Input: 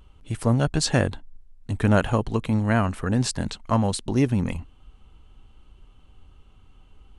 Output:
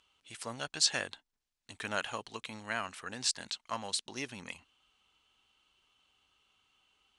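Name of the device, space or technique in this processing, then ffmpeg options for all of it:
piezo pickup straight into a mixer: -af "lowpass=5000,aderivative,volume=5.5dB"

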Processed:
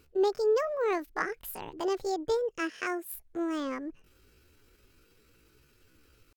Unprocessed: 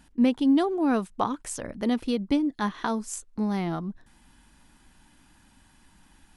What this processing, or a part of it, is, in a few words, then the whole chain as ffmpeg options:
chipmunk voice: -filter_complex "[0:a]asplit=3[link_01][link_02][link_03];[link_01]afade=type=out:start_time=2.61:duration=0.02[link_04];[link_02]highpass=95,afade=type=in:start_time=2.61:duration=0.02,afade=type=out:start_time=3.15:duration=0.02[link_05];[link_03]afade=type=in:start_time=3.15:duration=0.02[link_06];[link_04][link_05][link_06]amix=inputs=3:normalize=0,asetrate=70004,aresample=44100,atempo=0.629961,volume=-5dB"

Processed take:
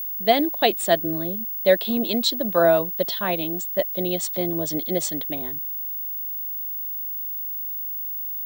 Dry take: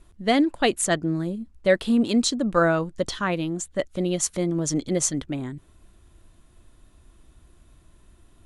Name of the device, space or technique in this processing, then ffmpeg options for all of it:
old television with a line whistle: -af "highpass=frequency=180:width=0.5412,highpass=frequency=180:width=1.3066,equalizer=frequency=260:width_type=q:width=4:gain=-7,equalizer=frequency=660:width_type=q:width=4:gain=8,equalizer=frequency=1300:width_type=q:width=4:gain=-7,equalizer=frequency=3700:width_type=q:width=4:gain=9,equalizer=frequency=6500:width_type=q:width=4:gain=-9,lowpass=frequency=8400:width=0.5412,lowpass=frequency=8400:width=1.3066,aeval=exprs='val(0)+0.0447*sin(2*PI*15625*n/s)':channel_layout=same"

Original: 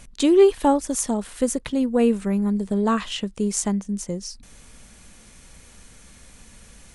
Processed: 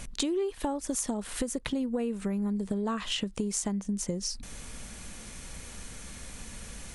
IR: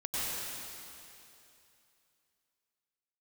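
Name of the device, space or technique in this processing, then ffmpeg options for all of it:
serial compression, peaks first: -af "acompressor=threshold=-28dB:ratio=5,acompressor=threshold=-34dB:ratio=2.5,volume=4.5dB"

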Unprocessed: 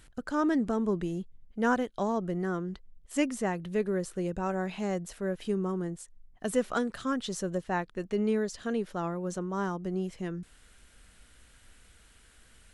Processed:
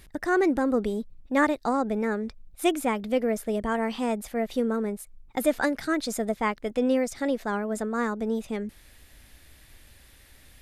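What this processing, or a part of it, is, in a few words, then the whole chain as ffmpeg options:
nightcore: -af "asetrate=52920,aresample=44100,volume=4.5dB"

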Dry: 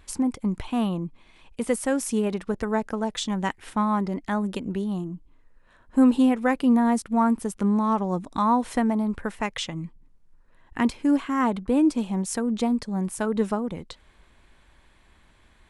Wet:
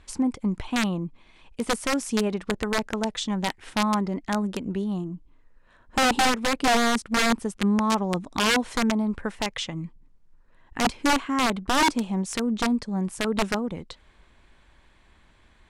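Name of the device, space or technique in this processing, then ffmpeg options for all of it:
overflowing digital effects unit: -af "aeval=exprs='(mod(5.96*val(0)+1,2)-1)/5.96':channel_layout=same,lowpass=8300"

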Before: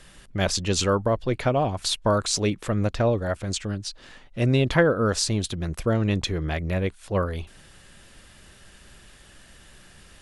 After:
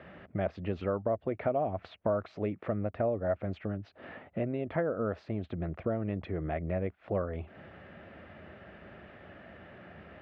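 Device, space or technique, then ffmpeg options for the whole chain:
bass amplifier: -af "acompressor=threshold=-37dB:ratio=4,highpass=frequency=85:width=0.5412,highpass=frequency=85:width=1.3066,equalizer=frequency=130:width_type=q:width=4:gain=-8,equalizer=frequency=650:width_type=q:width=4:gain=7,equalizer=frequency=1000:width_type=q:width=4:gain=-6,equalizer=frequency=1600:width_type=q:width=4:gain=-5,lowpass=frequency=2000:width=0.5412,lowpass=frequency=2000:width=1.3066,volume=5.5dB"

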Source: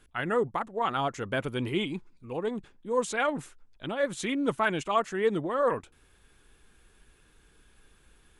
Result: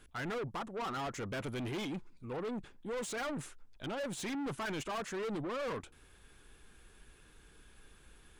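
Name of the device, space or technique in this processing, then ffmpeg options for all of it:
saturation between pre-emphasis and de-emphasis: -af "highshelf=frequency=4700:gain=6.5,asoftclip=type=tanh:threshold=-36.5dB,highshelf=frequency=4700:gain=-6.5,volume=1dB"

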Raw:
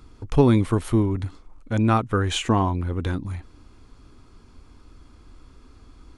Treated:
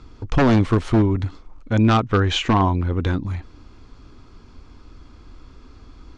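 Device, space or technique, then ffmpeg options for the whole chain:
synthesiser wavefolder: -filter_complex "[0:a]aeval=exprs='0.2*(abs(mod(val(0)/0.2+3,4)-2)-1)':channel_layout=same,lowpass=frequency=6500:width=0.5412,lowpass=frequency=6500:width=1.3066,asettb=1/sr,asplit=3[link_01][link_02][link_03];[link_01]atrim=end=2.024[link_04];[link_02]atrim=start=2.02:end=2.65,asetpts=PTS-STARTPTS,afade=type=in:duration=0.004:curve=qsin,afade=type=out:start_time=0.626:duration=0.004:curve=qsin,lowpass=6300[link_05];[link_03]atrim=start=2.646[link_06];[link_04][link_05]acrossfade=duration=0.004:curve1=hsin:curve2=qsin[link_07];[link_07][link_06]acrossfade=duration=0.004:curve1=qsin:curve2=hsin,volume=4.5dB"

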